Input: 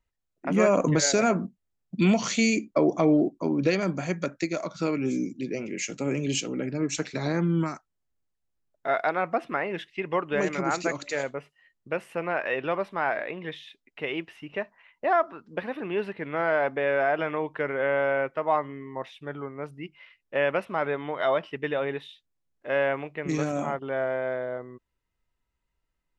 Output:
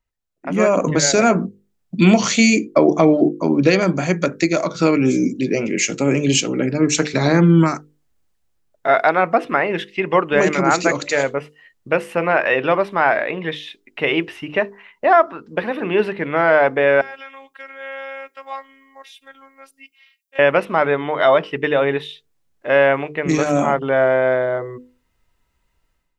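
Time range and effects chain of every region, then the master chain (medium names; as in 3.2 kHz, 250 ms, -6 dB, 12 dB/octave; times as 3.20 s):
17.01–20.39 s: differentiator + robot voice 270 Hz
whole clip: hum notches 50/100/150/200/250/300/350/400/450/500 Hz; level rider gain up to 14 dB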